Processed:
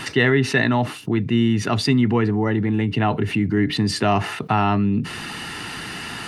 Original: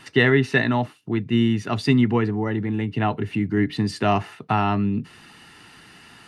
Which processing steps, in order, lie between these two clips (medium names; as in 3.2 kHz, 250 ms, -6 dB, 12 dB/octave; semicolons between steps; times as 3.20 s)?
level flattener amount 50%; trim -1 dB